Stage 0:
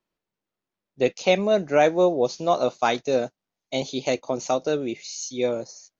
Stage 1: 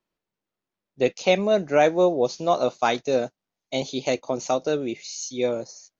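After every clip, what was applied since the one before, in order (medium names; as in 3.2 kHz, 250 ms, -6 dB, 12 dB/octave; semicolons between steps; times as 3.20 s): no audible change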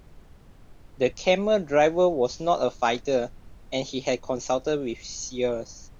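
added noise brown -45 dBFS; trim -1.5 dB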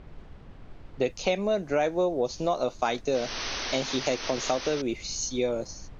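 painted sound noise, 3.14–4.82 s, 210–6300 Hz -37 dBFS; compression 3:1, threshold -29 dBFS, peak gain reduction 10.5 dB; level-controlled noise filter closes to 3 kHz, open at -28 dBFS; trim +4 dB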